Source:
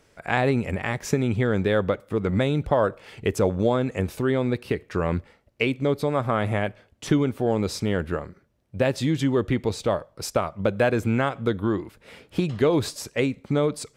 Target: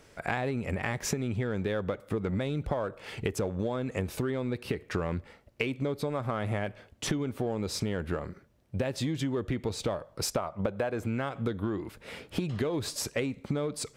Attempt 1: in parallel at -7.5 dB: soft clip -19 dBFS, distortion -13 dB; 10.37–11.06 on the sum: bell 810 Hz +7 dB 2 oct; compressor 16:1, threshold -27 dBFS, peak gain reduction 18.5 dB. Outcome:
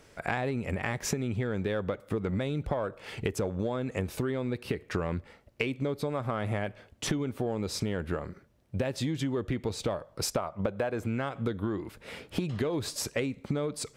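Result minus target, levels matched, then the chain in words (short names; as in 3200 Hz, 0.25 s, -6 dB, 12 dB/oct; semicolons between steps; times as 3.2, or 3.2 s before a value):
soft clip: distortion -8 dB
in parallel at -7.5 dB: soft clip -29 dBFS, distortion -5 dB; 10.37–11.06 on the sum: bell 810 Hz +7 dB 2 oct; compressor 16:1, threshold -27 dBFS, peak gain reduction 17.5 dB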